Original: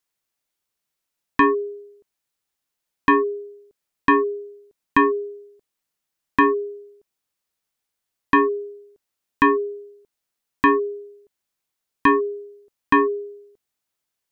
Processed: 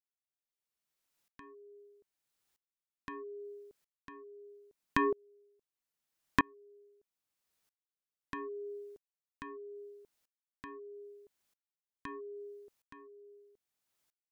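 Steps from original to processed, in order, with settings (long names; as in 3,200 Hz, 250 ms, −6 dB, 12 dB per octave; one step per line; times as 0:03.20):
downward compressor 4 to 1, threshold −30 dBFS, peak gain reduction 15 dB
tremolo with a ramp in dB swelling 0.78 Hz, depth 32 dB
level +3 dB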